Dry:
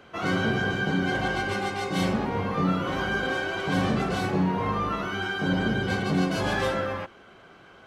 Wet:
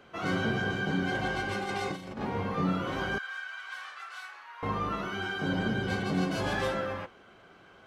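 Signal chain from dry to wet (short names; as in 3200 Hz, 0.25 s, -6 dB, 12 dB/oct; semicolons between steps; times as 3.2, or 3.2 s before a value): 1.63–2.21 negative-ratio compressor -30 dBFS, ratio -0.5; flange 0.59 Hz, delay 4.9 ms, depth 6.4 ms, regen -80%; 3.18–4.63 ladder high-pass 1100 Hz, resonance 40%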